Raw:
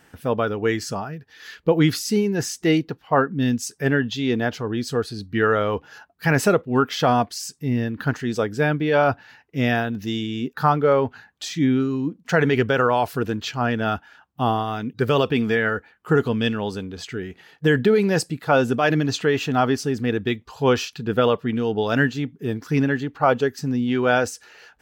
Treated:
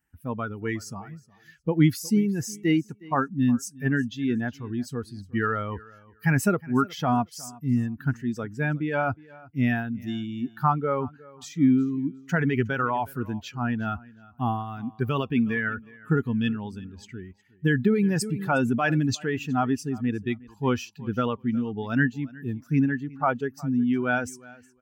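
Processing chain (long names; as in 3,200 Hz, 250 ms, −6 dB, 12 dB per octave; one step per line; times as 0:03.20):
spectral dynamics exaggerated over time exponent 1.5
graphic EQ with 10 bands 250 Hz +4 dB, 500 Hz −10 dB, 4,000 Hz −10 dB
repeating echo 363 ms, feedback 18%, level −22 dB
0:18.21–0:19.15: envelope flattener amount 50%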